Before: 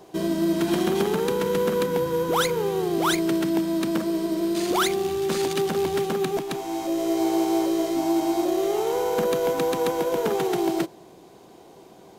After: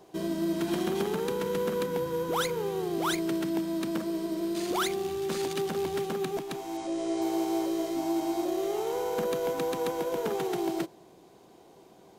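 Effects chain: 6.77–7.22 s: steep low-pass 9.9 kHz 96 dB/octave; trim -6.5 dB

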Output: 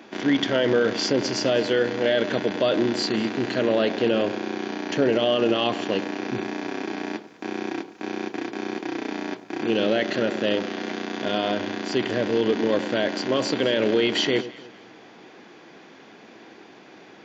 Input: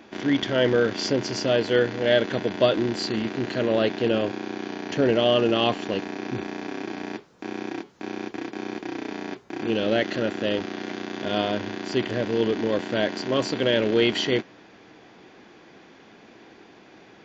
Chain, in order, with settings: Bessel high-pass 160 Hz, order 2; peak limiter -14.5 dBFS, peak gain reduction 7.5 dB; on a send: echo whose repeats swap between lows and highs 103 ms, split 1 kHz, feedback 56%, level -13 dB; on the sum: trim +3 dB

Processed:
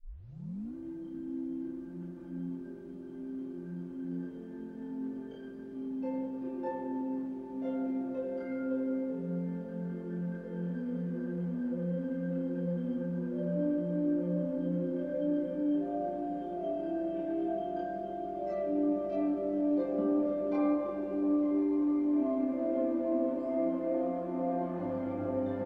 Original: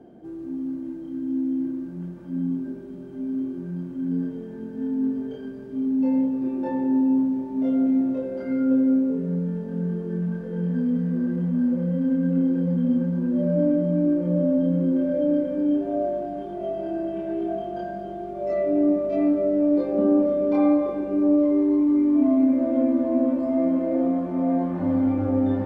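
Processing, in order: tape start-up on the opening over 0.76 s; peaking EQ 140 Hz -7 dB 0.99 oct; comb 5.8 ms, depth 44%; echo that smears into a reverb 592 ms, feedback 75%, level -14 dB; trim -8 dB

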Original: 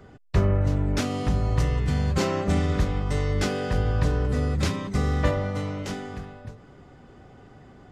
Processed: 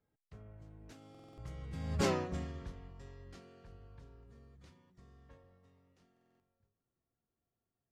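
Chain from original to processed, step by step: Doppler pass-by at 2.08 s, 27 m/s, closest 2.1 m; buffer glitch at 1.10/6.12 s, samples 2048, times 5; trim -5.5 dB

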